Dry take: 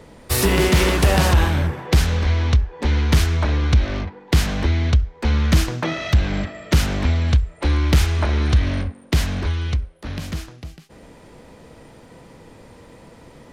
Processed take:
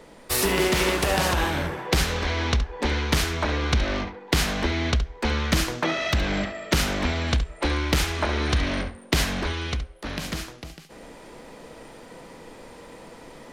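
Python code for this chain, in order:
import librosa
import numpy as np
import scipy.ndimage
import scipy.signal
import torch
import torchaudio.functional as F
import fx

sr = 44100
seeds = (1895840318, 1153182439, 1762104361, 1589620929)

p1 = fx.peak_eq(x, sr, hz=89.0, db=-13.0, octaves=1.9)
p2 = fx.rider(p1, sr, range_db=3, speed_s=0.5)
y = p2 + fx.echo_single(p2, sr, ms=70, db=-12.0, dry=0)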